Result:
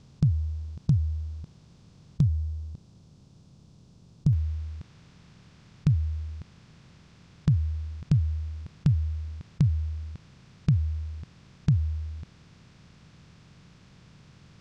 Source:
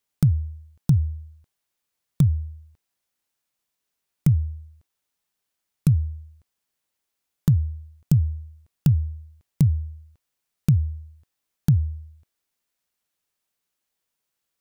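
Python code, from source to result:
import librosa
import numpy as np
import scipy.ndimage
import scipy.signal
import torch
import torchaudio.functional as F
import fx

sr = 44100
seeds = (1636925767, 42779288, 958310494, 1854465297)

y = fx.bin_compress(x, sr, power=0.4)
y = scipy.signal.sosfilt(scipy.signal.butter(4, 5700.0, 'lowpass', fs=sr, output='sos'), y)
y = fx.peak_eq(y, sr, hz=1900.0, db=fx.steps((0.0, -7.5), (2.23, -14.5), (4.33, 2.5)), octaves=1.6)
y = y * librosa.db_to_amplitude(-6.0)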